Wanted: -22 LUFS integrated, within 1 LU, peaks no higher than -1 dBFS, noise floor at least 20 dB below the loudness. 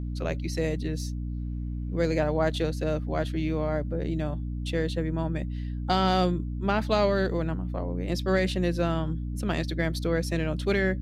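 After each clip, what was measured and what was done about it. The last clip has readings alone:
hum 60 Hz; harmonics up to 300 Hz; hum level -29 dBFS; loudness -28.5 LUFS; peak -10.0 dBFS; loudness target -22.0 LUFS
-> de-hum 60 Hz, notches 5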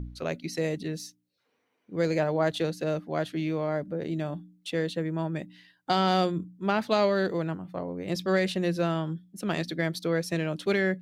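hum none; loudness -29.0 LUFS; peak -11.5 dBFS; loudness target -22.0 LUFS
-> gain +7 dB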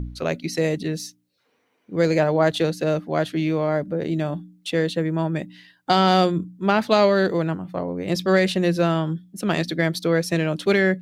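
loudness -22.0 LUFS; peak -4.5 dBFS; noise floor -68 dBFS

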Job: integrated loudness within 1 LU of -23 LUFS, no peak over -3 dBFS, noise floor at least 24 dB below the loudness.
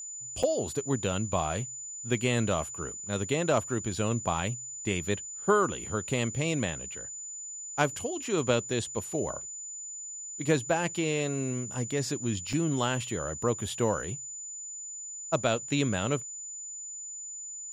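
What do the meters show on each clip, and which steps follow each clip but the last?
dropouts 2; longest dropout 4.5 ms; steady tone 7000 Hz; tone level -38 dBFS; loudness -31.0 LUFS; peak -11.0 dBFS; loudness target -23.0 LUFS
-> interpolate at 0.43/12.53, 4.5 ms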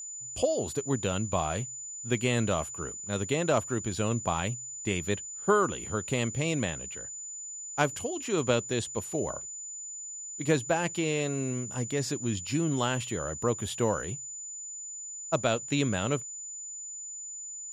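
dropouts 0; steady tone 7000 Hz; tone level -38 dBFS
-> notch 7000 Hz, Q 30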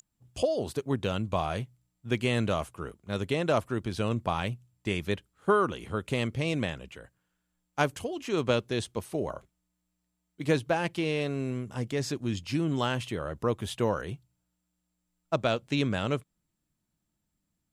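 steady tone none; loudness -30.5 LUFS; peak -11.0 dBFS; loudness target -23.0 LUFS
-> gain +7.5 dB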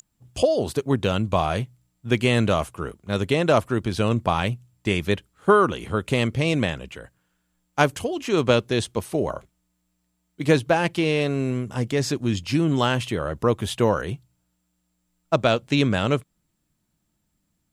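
loudness -23.0 LUFS; peak -3.5 dBFS; noise floor -74 dBFS

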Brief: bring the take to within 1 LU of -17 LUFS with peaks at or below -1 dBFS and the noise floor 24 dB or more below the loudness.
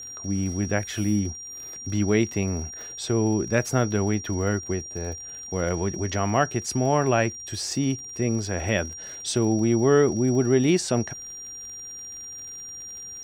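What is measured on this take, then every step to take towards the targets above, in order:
ticks 47/s; steady tone 5700 Hz; tone level -36 dBFS; loudness -25.0 LUFS; peak -7.0 dBFS; loudness target -17.0 LUFS
-> de-click; notch 5700 Hz, Q 30; gain +8 dB; limiter -1 dBFS

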